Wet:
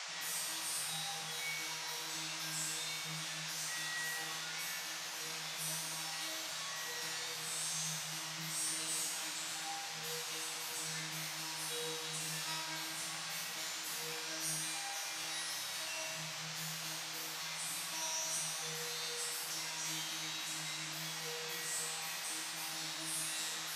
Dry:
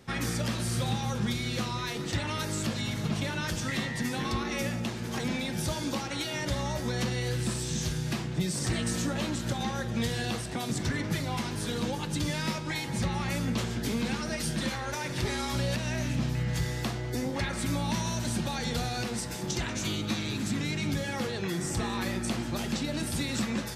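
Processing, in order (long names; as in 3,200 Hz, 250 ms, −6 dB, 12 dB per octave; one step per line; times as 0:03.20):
RIAA equalisation recording
tuned comb filter 160 Hz, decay 1.4 s, mix 100%
noise in a band 610–6,600 Hz −50 dBFS
level +5 dB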